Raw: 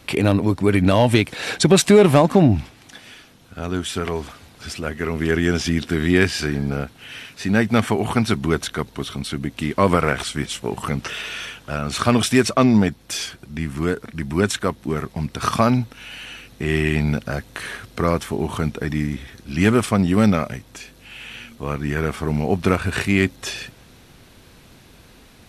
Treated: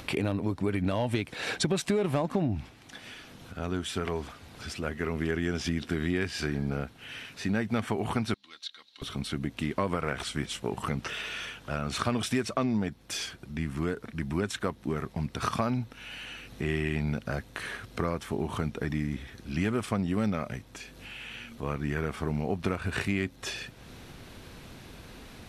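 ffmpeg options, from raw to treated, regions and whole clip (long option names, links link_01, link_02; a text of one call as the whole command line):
ffmpeg -i in.wav -filter_complex "[0:a]asettb=1/sr,asplit=3[link_01][link_02][link_03];[link_01]atrim=end=8.344[link_04];[link_02]atrim=start=8.34:end=9.02,asetpts=PTS-STARTPTS,afade=type=in:duration=0.004:curve=qsin,afade=type=out:start_time=0.676:duration=0.004:curve=qsin,bandpass=frequency=4000:width_type=q:width=4.4,aecho=1:1:3.7:0.6,atrim=end_sample=29988[link_05];[link_03]atrim=start=9.016[link_06];[link_04][link_05]acrossfade=duration=0.004:curve1=hsin:curve2=qsin[link_07];[link_07][link_06]acrossfade=duration=0.004:curve1=qsin:curve2=hsin,acompressor=mode=upward:threshold=-32dB:ratio=2.5,highshelf=frequency=5200:gain=-5,acompressor=threshold=-20dB:ratio=4,volume=-5.5dB" out.wav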